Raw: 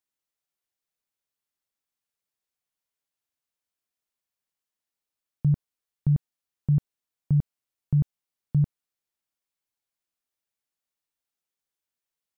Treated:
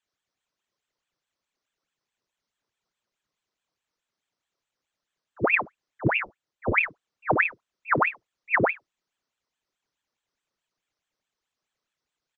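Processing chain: air absorption 150 m; FFT band-reject 110–660 Hz; resonant low shelf 670 Hz +8.5 dB, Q 1.5; 6.13–6.72 tube stage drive 31 dB, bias 0.55; early reflections 27 ms -5 dB, 52 ms -6 dB; reverb, pre-delay 3 ms, DRR 3.5 dB; ring modulator with a swept carrier 1400 Hz, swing 85%, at 4.7 Hz; gain +4 dB

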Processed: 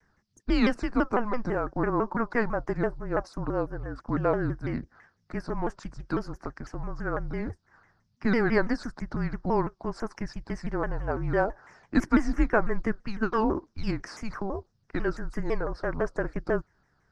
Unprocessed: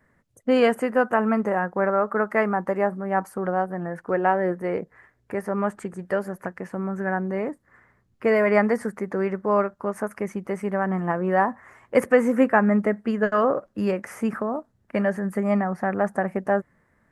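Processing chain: frequency shift -220 Hz; synth low-pass 5200 Hz, resonance Q 6.3; shaped vibrato saw down 6 Hz, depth 250 cents; gain -4.5 dB

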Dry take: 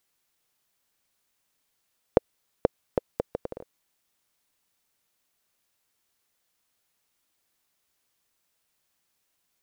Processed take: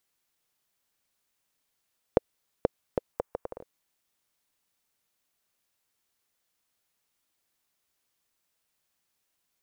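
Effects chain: 3.13–3.6 graphic EQ 125/250/1000/4000 Hz -6/-4/+7/-6 dB; gain -3 dB

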